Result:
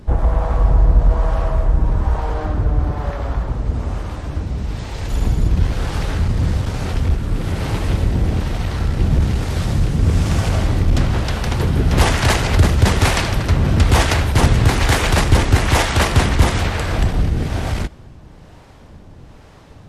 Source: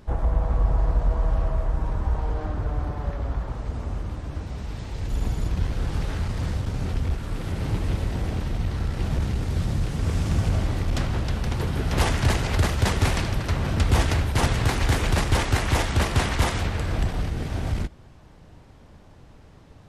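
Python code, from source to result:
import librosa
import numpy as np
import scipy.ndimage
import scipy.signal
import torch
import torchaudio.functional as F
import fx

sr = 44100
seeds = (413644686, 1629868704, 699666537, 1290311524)

p1 = fx.harmonic_tremolo(x, sr, hz=1.1, depth_pct=50, crossover_hz=440.0)
p2 = fx.clip_asym(p1, sr, top_db=-17.5, bottom_db=-15.0)
p3 = p1 + (p2 * 10.0 ** (-7.0 / 20.0))
y = p3 * 10.0 ** (7.0 / 20.0)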